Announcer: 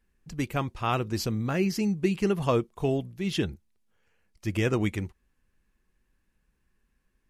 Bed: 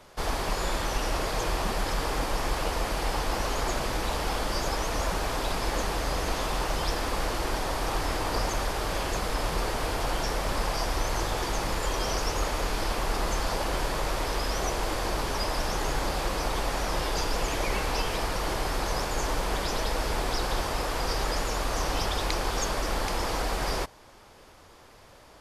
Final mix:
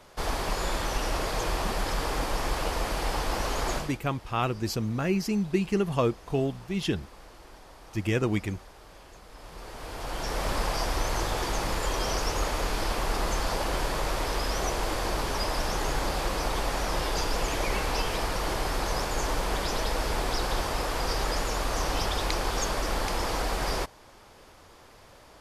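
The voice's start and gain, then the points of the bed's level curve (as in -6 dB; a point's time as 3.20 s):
3.50 s, -0.5 dB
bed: 3.76 s -0.5 dB
4.01 s -20.5 dB
9.26 s -20.5 dB
10.43 s 0 dB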